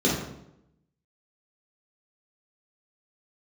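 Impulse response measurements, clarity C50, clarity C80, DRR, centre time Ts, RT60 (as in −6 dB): 3.5 dB, 6.5 dB, −6.0 dB, 45 ms, 0.80 s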